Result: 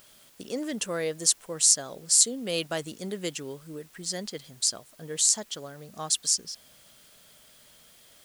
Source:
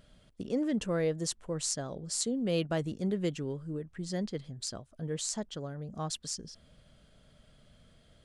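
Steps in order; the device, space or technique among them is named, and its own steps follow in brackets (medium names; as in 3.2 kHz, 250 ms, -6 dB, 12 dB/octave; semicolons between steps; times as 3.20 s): turntable without a phono preamp (RIAA curve recording; white noise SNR 28 dB); trim +3 dB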